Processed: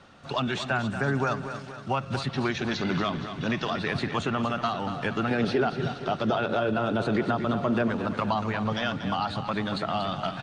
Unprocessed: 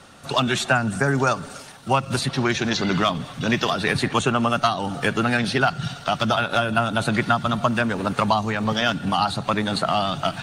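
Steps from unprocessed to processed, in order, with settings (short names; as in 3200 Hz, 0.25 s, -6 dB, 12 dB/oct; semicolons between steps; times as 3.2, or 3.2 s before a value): 5.31–7.88 bell 410 Hz +13.5 dB 1.1 oct; limiter -11 dBFS, peak gain reduction 8.5 dB; air absorption 120 m; feedback echo 0.235 s, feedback 51%, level -10 dB; gain -5 dB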